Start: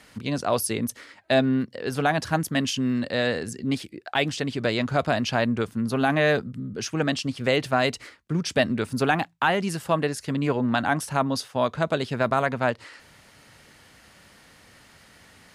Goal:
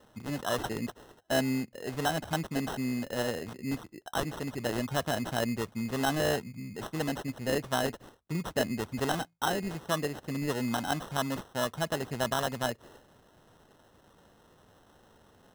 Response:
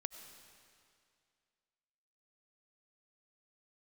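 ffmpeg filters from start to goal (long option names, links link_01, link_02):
-af "acrusher=samples=19:mix=1:aa=0.000001,volume=-7.5dB"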